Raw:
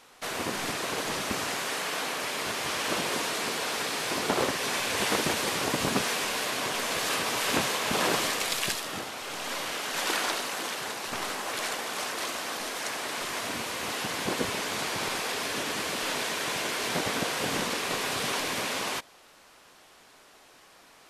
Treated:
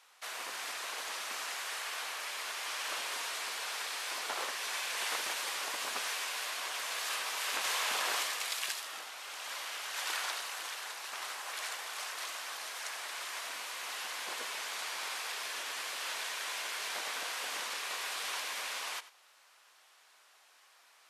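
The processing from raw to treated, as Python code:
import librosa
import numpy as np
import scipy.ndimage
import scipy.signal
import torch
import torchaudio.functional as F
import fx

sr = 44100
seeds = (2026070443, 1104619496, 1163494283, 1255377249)

y = scipy.signal.sosfilt(scipy.signal.butter(2, 890.0, 'highpass', fs=sr, output='sos'), x)
y = y + 10.0 ** (-16.0 / 20.0) * np.pad(y, (int(92 * sr / 1000.0), 0))[:len(y)]
y = fx.env_flatten(y, sr, amount_pct=100, at=(7.64, 8.23))
y = F.gain(torch.from_numpy(y), -6.5).numpy()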